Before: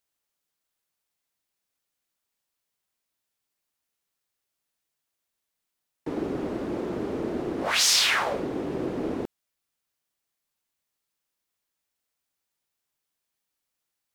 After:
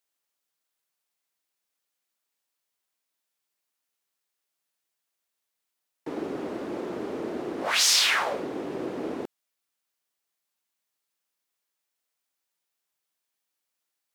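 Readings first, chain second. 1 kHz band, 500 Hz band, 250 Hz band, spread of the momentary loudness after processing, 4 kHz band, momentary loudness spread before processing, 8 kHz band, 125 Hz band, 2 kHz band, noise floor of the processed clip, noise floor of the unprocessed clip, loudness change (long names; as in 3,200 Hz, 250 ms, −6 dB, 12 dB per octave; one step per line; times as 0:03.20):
−0.5 dB, −2.0 dB, −3.5 dB, 17 LU, 0.0 dB, 15 LU, 0.0 dB, −7.5 dB, 0.0 dB, −83 dBFS, −83 dBFS, −0.5 dB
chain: high-pass filter 320 Hz 6 dB per octave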